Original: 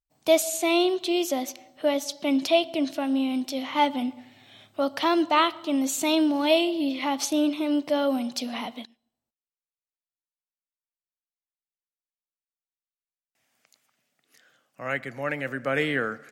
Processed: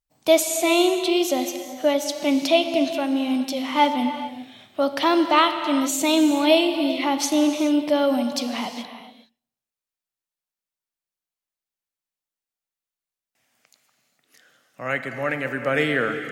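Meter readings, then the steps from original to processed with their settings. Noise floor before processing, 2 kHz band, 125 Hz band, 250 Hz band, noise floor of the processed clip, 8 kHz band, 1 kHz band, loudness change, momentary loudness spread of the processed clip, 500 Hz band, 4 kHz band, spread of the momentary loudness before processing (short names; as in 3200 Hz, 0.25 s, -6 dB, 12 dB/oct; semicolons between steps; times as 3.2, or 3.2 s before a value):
under -85 dBFS, +4.0 dB, n/a, +4.0 dB, under -85 dBFS, +4.0 dB, +4.0 dB, +4.0 dB, 10 LU, +4.0 dB, +4.0 dB, 9 LU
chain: non-linear reverb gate 0.45 s flat, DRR 7.5 dB; gain +3.5 dB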